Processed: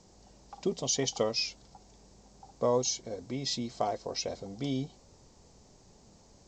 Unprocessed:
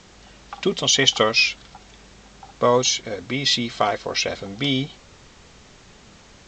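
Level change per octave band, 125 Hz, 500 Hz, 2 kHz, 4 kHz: -9.0 dB, -9.0 dB, -22.0 dB, -15.5 dB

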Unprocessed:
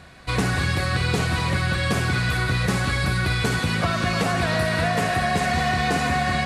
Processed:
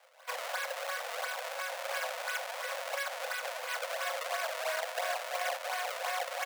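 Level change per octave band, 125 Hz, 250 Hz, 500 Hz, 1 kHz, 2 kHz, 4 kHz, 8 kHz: under -40 dB, under -40 dB, -9.5 dB, -11.5 dB, -12.0 dB, -12.0 dB, -8.0 dB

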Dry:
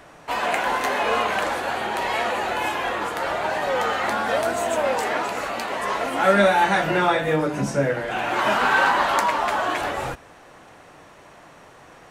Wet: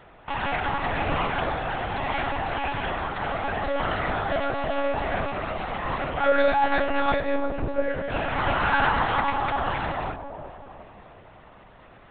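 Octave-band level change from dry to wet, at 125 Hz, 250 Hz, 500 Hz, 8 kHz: 0.0 dB, -3.0 dB, -3.5 dB, under -40 dB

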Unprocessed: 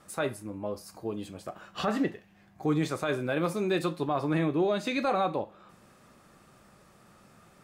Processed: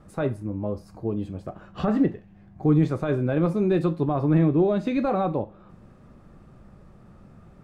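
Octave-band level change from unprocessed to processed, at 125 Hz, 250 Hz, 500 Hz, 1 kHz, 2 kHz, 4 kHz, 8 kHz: +11.0 dB, +7.5 dB, +4.5 dB, +0.5 dB, -3.5 dB, no reading, under -10 dB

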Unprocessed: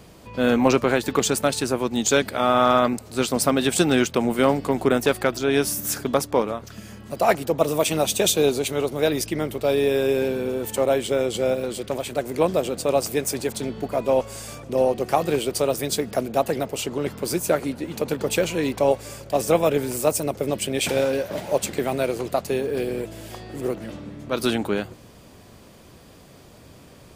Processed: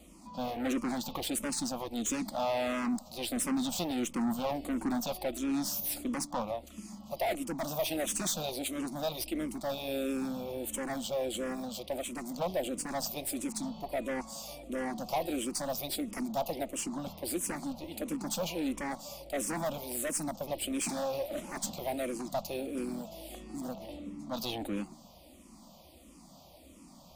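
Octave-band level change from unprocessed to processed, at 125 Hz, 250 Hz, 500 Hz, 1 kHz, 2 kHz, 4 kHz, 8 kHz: -15.0 dB, -9.0 dB, -15.5 dB, -12.0 dB, -13.5 dB, -10.5 dB, -8.5 dB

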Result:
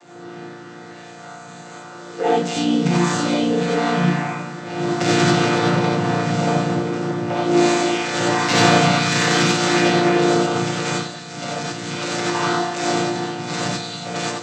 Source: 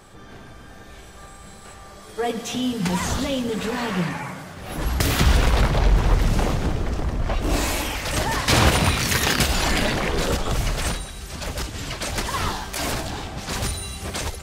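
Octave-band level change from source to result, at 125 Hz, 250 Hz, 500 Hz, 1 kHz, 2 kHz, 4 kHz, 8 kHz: +1.0 dB, +8.0 dB, +7.5 dB, +6.5 dB, +4.0 dB, +2.5 dB, +1.0 dB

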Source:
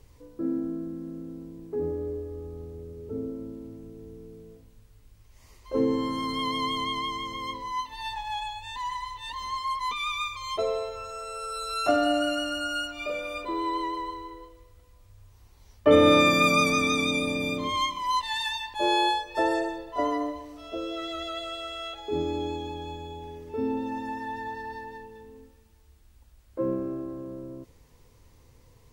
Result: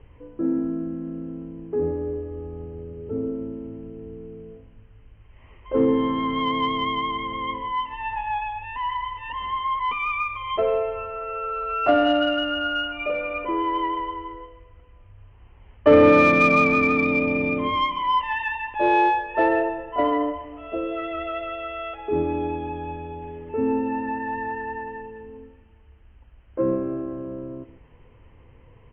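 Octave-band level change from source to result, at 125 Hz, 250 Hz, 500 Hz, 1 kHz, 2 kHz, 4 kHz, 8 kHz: +4.0 dB, +5.0 dB, +5.5 dB, +5.5 dB, +5.0 dB, -2.0 dB, under -15 dB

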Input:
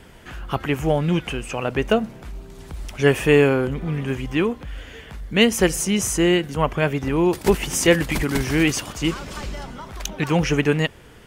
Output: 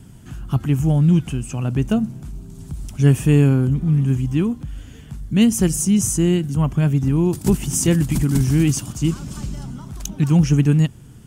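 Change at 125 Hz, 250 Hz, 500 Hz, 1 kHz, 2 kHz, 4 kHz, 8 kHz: +9.0 dB, +4.0 dB, -6.5 dB, -8.0 dB, -10.5 dB, -7.0 dB, +2.5 dB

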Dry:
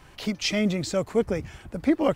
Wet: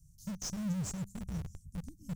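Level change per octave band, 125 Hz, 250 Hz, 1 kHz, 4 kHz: -5.5 dB, -13.0 dB, -19.0 dB, -18.0 dB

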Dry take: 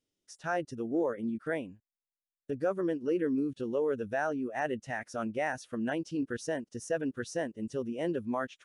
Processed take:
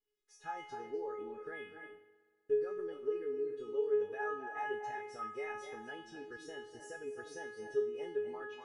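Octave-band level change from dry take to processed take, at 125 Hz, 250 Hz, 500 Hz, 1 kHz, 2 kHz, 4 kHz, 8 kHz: under -15 dB, -18.5 dB, -3.5 dB, -5.0 dB, -7.0 dB, -6.5 dB, under -10 dB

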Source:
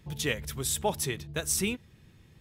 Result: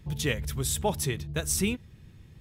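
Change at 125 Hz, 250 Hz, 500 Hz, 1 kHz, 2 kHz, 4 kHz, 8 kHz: +5.5 dB, +3.5 dB, +1.0 dB, +0.5 dB, 0.0 dB, 0.0 dB, 0.0 dB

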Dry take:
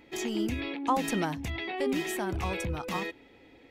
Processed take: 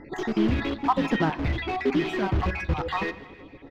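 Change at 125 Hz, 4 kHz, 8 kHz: +8.0 dB, +2.0 dB, under -10 dB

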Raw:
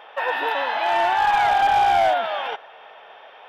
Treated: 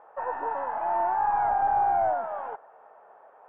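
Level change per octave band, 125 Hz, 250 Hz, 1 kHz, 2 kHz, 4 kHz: no reading, -6.5 dB, -6.0 dB, -16.0 dB, under -35 dB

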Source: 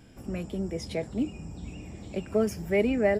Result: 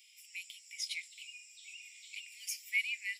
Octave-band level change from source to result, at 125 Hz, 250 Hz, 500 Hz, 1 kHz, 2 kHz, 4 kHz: under -40 dB, under -40 dB, under -40 dB, under -40 dB, +0.5 dB, +4.0 dB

